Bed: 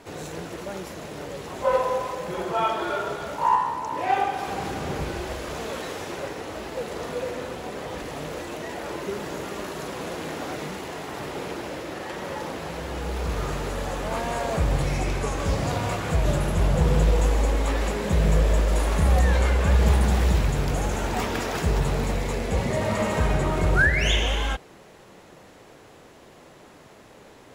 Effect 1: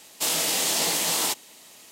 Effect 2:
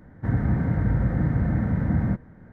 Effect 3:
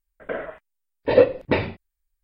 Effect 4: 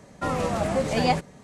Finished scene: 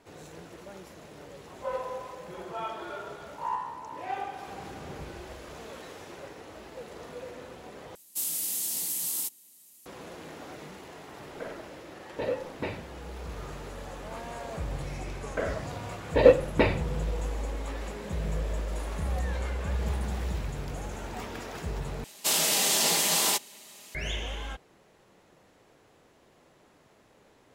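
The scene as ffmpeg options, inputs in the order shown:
-filter_complex "[1:a]asplit=2[a][b];[3:a]asplit=2[c][d];[0:a]volume=-11.5dB[e];[a]firequalizer=gain_entry='entry(250,0);entry(540,-10);entry(11000,13)':delay=0.05:min_phase=1[f];[c]alimiter=limit=-9.5dB:level=0:latency=1:release=71[g];[b]aecho=1:1:5:0.37[h];[e]asplit=3[i][j][k];[i]atrim=end=7.954[l];[f]atrim=end=1.91,asetpts=PTS-STARTPTS,volume=-13.5dB[m];[j]atrim=start=9.856:end=22.044[n];[h]atrim=end=1.91,asetpts=PTS-STARTPTS,volume=-1dB[o];[k]atrim=start=23.946[p];[g]atrim=end=2.23,asetpts=PTS-STARTPTS,volume=-11.5dB,afade=t=in:d=0.004:c=hsin,afade=t=out:st=2.226:d=0.004:c=hsin,adelay=11110[q];[d]atrim=end=2.23,asetpts=PTS-STARTPTS,volume=-2dB,afade=t=in:d=0.004:c=hsin,afade=t=out:st=2.226:d=0.004:c=hsin,adelay=665028S[r];[l][m]acrossfade=d=0.004:c1=hsin:c2=hsin[s];[s][n]acrossfade=d=0.004:c1=hsin:c2=hsin[t];[t][o]acrossfade=d=0.004:c1=hsin:c2=hsin[u];[u][p]acrossfade=d=0.004:c1=hsin:c2=hsin[v];[v][q][r]amix=inputs=3:normalize=0"

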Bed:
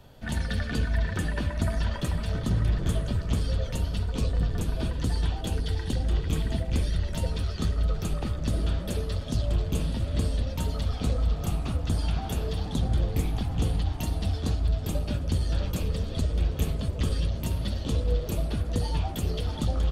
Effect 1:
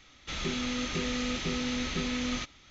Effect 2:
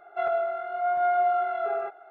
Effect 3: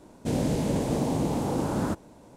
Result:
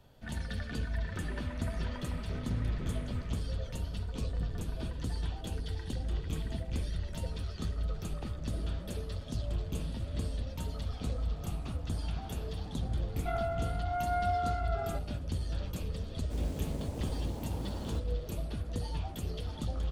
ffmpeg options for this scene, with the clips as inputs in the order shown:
-filter_complex "[0:a]volume=-8.5dB[a];[1:a]lowpass=1.7k[b];[2:a]equalizer=f=2.5k:t=o:w=1.3:g=4[c];[3:a]acrusher=bits=5:mode=log:mix=0:aa=0.000001[d];[b]atrim=end=2.7,asetpts=PTS-STARTPTS,volume=-12.5dB,afade=t=in:d=0.004:c=hsin,afade=t=out:st=2.696:d=0.004:c=hsin,adelay=840[e];[c]atrim=end=2.1,asetpts=PTS-STARTPTS,volume=-9dB,afade=t=in:d=0.004:c=hsin,afade=t=out:st=2.096:d=0.004:c=hsin,adelay=13090[f];[d]atrim=end=2.36,asetpts=PTS-STARTPTS,volume=-15.5dB,afade=t=in:d=0.004:c=hsin,afade=t=out:st=2.356:d=0.004:c=hsin,adelay=16050[g];[a][e][f][g]amix=inputs=4:normalize=0"

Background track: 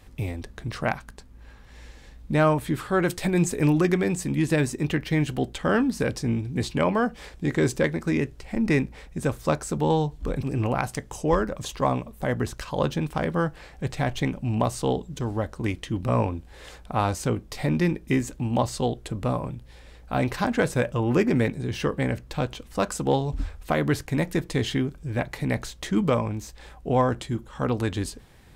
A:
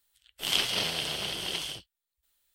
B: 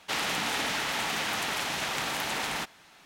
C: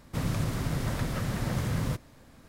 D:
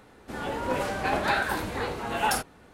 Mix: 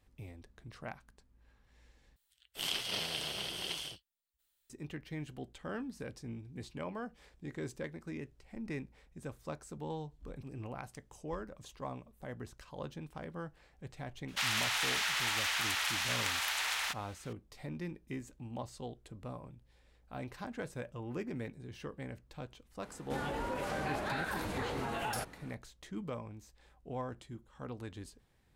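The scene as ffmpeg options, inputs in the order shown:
-filter_complex "[0:a]volume=-18.5dB[a];[1:a]alimiter=limit=-12.5dB:level=0:latency=1:release=421[b];[2:a]highpass=1.2k[c];[4:a]acompressor=threshold=-32dB:ratio=6:attack=3.2:release=140:knee=1:detection=peak[d];[a]asplit=2[e][f];[e]atrim=end=2.164[g];[b]atrim=end=2.54,asetpts=PTS-STARTPTS,volume=-6dB[h];[f]atrim=start=4.696[i];[c]atrim=end=3.05,asetpts=PTS-STARTPTS,volume=-1.5dB,afade=t=in:d=0.004:c=hsin,afade=t=out:st=3.046:d=0.004:c=hsin,adelay=629748S[j];[d]atrim=end=2.73,asetpts=PTS-STARTPTS,volume=-1.5dB,afade=t=in:d=0.004:c=hsin,afade=t=out:st=2.726:d=0.004:c=hsin,adelay=22820[k];[g][h]acrossfade=d=0.004:c1=hsin:c2=hsin[l];[l][i]acrossfade=d=0.004:c1=hsin:c2=hsin[m];[m][j][k]amix=inputs=3:normalize=0"

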